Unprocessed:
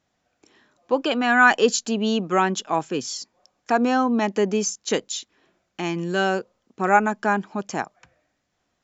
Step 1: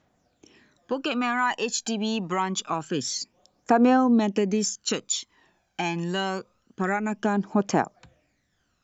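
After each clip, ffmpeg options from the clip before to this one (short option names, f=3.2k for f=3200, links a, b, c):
-af "acompressor=threshold=-22dB:ratio=4,aphaser=in_gain=1:out_gain=1:delay=1.3:decay=0.6:speed=0.26:type=triangular"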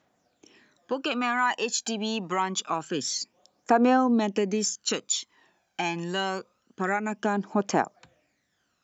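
-af "highpass=f=250:p=1"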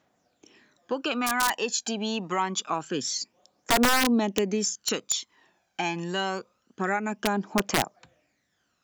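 -af "aeval=exprs='(mod(5.01*val(0)+1,2)-1)/5.01':c=same"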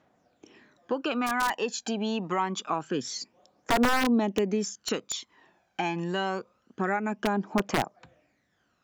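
-filter_complex "[0:a]highshelf=f=3.5k:g=-11.5,asplit=2[a][b];[b]acompressor=threshold=-36dB:ratio=6,volume=0dB[c];[a][c]amix=inputs=2:normalize=0,volume=-2dB"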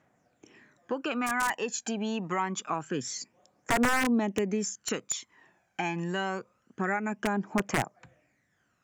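-af "equalizer=f=125:t=o:w=1:g=6,equalizer=f=2k:t=o:w=1:g=6,equalizer=f=4k:t=o:w=1:g=-6,equalizer=f=8k:t=o:w=1:g=9,volume=-3.5dB"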